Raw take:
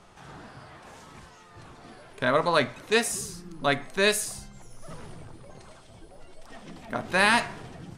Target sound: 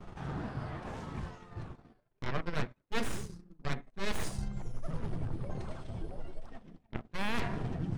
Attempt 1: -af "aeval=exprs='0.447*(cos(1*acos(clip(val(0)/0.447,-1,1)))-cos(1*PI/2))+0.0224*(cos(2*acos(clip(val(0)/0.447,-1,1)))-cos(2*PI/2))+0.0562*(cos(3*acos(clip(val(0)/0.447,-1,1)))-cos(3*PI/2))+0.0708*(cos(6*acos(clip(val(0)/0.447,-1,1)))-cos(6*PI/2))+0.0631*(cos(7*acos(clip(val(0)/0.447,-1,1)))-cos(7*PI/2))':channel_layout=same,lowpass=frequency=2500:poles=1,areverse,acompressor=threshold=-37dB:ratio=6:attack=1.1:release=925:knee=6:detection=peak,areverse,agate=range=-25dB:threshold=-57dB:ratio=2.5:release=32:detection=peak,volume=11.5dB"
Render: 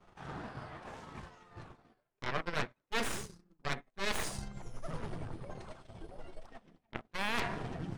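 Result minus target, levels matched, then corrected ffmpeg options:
250 Hz band −5.0 dB
-af "aeval=exprs='0.447*(cos(1*acos(clip(val(0)/0.447,-1,1)))-cos(1*PI/2))+0.0224*(cos(2*acos(clip(val(0)/0.447,-1,1)))-cos(2*PI/2))+0.0562*(cos(3*acos(clip(val(0)/0.447,-1,1)))-cos(3*PI/2))+0.0708*(cos(6*acos(clip(val(0)/0.447,-1,1)))-cos(6*PI/2))+0.0631*(cos(7*acos(clip(val(0)/0.447,-1,1)))-cos(7*PI/2))':channel_layout=same,lowpass=frequency=2500:poles=1,lowshelf=frequency=330:gain=10.5,areverse,acompressor=threshold=-37dB:ratio=6:attack=1.1:release=925:knee=6:detection=peak,areverse,agate=range=-25dB:threshold=-57dB:ratio=2.5:release=32:detection=peak,volume=11.5dB"

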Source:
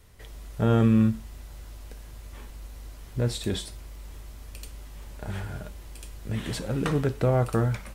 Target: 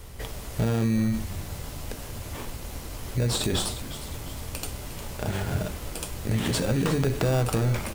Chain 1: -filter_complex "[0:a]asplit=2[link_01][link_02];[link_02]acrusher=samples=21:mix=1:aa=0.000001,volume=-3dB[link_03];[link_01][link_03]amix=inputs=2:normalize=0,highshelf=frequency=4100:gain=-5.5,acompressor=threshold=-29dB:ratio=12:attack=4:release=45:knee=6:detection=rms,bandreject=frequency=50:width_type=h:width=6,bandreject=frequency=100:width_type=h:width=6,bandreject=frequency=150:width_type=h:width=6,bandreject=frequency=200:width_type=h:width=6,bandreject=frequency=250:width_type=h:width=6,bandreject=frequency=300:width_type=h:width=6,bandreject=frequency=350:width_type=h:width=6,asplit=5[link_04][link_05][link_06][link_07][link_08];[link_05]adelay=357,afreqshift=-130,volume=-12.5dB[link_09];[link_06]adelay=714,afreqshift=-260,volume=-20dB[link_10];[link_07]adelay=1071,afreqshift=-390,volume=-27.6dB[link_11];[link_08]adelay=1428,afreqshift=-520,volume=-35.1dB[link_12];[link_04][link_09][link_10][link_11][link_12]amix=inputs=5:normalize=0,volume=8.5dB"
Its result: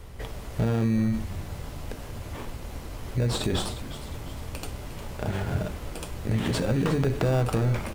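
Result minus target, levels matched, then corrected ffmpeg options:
8,000 Hz band −6.5 dB
-filter_complex "[0:a]asplit=2[link_01][link_02];[link_02]acrusher=samples=21:mix=1:aa=0.000001,volume=-3dB[link_03];[link_01][link_03]amix=inputs=2:normalize=0,highshelf=frequency=4100:gain=4,acompressor=threshold=-29dB:ratio=12:attack=4:release=45:knee=6:detection=rms,bandreject=frequency=50:width_type=h:width=6,bandreject=frequency=100:width_type=h:width=6,bandreject=frequency=150:width_type=h:width=6,bandreject=frequency=200:width_type=h:width=6,bandreject=frequency=250:width_type=h:width=6,bandreject=frequency=300:width_type=h:width=6,bandreject=frequency=350:width_type=h:width=6,asplit=5[link_04][link_05][link_06][link_07][link_08];[link_05]adelay=357,afreqshift=-130,volume=-12.5dB[link_09];[link_06]adelay=714,afreqshift=-260,volume=-20dB[link_10];[link_07]adelay=1071,afreqshift=-390,volume=-27.6dB[link_11];[link_08]adelay=1428,afreqshift=-520,volume=-35.1dB[link_12];[link_04][link_09][link_10][link_11][link_12]amix=inputs=5:normalize=0,volume=8.5dB"

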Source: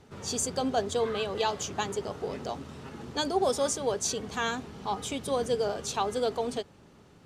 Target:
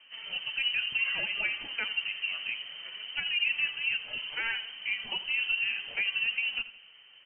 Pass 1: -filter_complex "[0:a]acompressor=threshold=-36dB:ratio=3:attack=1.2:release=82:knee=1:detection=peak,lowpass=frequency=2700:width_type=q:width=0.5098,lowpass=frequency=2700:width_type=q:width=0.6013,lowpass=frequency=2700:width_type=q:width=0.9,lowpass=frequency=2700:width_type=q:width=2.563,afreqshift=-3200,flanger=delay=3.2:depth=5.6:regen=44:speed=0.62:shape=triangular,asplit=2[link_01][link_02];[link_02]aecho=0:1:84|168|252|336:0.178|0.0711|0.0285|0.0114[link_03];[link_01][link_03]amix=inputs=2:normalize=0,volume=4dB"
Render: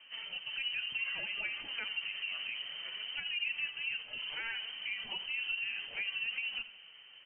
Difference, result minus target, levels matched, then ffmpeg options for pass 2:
downward compressor: peak gain reduction +7.5 dB
-filter_complex "[0:a]acompressor=threshold=-25dB:ratio=3:attack=1.2:release=82:knee=1:detection=peak,lowpass=frequency=2700:width_type=q:width=0.5098,lowpass=frequency=2700:width_type=q:width=0.6013,lowpass=frequency=2700:width_type=q:width=0.9,lowpass=frequency=2700:width_type=q:width=2.563,afreqshift=-3200,flanger=delay=3.2:depth=5.6:regen=44:speed=0.62:shape=triangular,asplit=2[link_01][link_02];[link_02]aecho=0:1:84|168|252|336:0.178|0.0711|0.0285|0.0114[link_03];[link_01][link_03]amix=inputs=2:normalize=0,volume=4dB"

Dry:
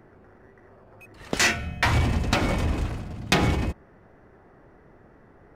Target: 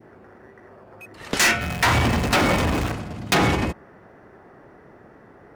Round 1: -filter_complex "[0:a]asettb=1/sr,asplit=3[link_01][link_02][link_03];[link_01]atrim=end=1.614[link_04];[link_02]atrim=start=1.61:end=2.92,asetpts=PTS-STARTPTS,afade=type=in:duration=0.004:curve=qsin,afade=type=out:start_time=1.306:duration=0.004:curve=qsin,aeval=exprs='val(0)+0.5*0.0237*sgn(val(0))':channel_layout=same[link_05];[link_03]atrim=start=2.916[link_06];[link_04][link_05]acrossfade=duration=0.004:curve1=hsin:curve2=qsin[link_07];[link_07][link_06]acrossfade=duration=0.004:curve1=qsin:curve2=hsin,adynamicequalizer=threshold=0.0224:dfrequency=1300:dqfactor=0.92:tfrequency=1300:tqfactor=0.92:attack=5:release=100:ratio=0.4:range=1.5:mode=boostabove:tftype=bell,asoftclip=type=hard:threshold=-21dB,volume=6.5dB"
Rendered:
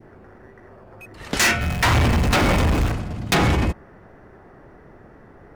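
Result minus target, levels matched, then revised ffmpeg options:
125 Hz band +3.0 dB
-filter_complex "[0:a]asettb=1/sr,asplit=3[link_01][link_02][link_03];[link_01]atrim=end=1.614[link_04];[link_02]atrim=start=1.61:end=2.92,asetpts=PTS-STARTPTS,afade=type=in:duration=0.004:curve=qsin,afade=type=out:start_time=1.306:duration=0.004:curve=qsin,aeval=exprs='val(0)+0.5*0.0237*sgn(val(0))':channel_layout=same[link_05];[link_03]atrim=start=2.916[link_06];[link_04][link_05]acrossfade=duration=0.004:curve1=hsin:curve2=qsin[link_07];[link_07][link_06]acrossfade=duration=0.004:curve1=qsin:curve2=hsin,adynamicequalizer=threshold=0.0224:dfrequency=1300:dqfactor=0.92:tfrequency=1300:tqfactor=0.92:attack=5:release=100:ratio=0.4:range=1.5:mode=boostabove:tftype=bell,highpass=frequency=160:poles=1,asoftclip=type=hard:threshold=-21dB,volume=6.5dB"

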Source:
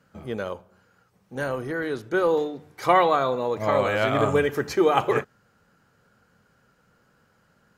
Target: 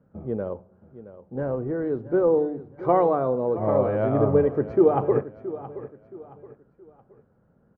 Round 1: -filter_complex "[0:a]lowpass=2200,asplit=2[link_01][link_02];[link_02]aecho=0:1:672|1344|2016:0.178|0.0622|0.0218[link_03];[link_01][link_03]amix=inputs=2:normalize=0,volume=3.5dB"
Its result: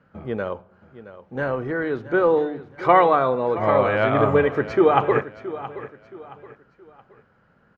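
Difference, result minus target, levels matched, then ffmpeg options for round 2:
2,000 Hz band +13.5 dB
-filter_complex "[0:a]lowpass=590,asplit=2[link_01][link_02];[link_02]aecho=0:1:672|1344|2016:0.178|0.0622|0.0218[link_03];[link_01][link_03]amix=inputs=2:normalize=0,volume=3.5dB"

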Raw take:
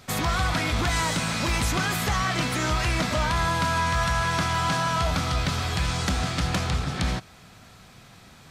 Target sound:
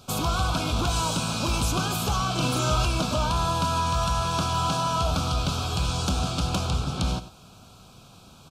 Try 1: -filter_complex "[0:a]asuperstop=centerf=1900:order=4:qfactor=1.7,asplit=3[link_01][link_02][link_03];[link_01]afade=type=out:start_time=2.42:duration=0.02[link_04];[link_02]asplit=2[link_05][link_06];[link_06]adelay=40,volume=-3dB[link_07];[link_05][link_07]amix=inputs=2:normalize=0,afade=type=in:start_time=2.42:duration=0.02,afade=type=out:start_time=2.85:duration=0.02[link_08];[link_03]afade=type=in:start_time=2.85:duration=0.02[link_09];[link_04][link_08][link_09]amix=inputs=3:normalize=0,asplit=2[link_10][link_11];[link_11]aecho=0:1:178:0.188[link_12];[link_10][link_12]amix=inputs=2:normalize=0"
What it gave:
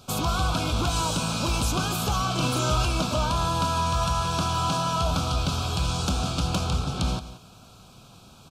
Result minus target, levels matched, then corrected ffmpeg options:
echo 80 ms late
-filter_complex "[0:a]asuperstop=centerf=1900:order=4:qfactor=1.7,asplit=3[link_01][link_02][link_03];[link_01]afade=type=out:start_time=2.42:duration=0.02[link_04];[link_02]asplit=2[link_05][link_06];[link_06]adelay=40,volume=-3dB[link_07];[link_05][link_07]amix=inputs=2:normalize=0,afade=type=in:start_time=2.42:duration=0.02,afade=type=out:start_time=2.85:duration=0.02[link_08];[link_03]afade=type=in:start_time=2.85:duration=0.02[link_09];[link_04][link_08][link_09]amix=inputs=3:normalize=0,asplit=2[link_10][link_11];[link_11]aecho=0:1:98:0.188[link_12];[link_10][link_12]amix=inputs=2:normalize=0"

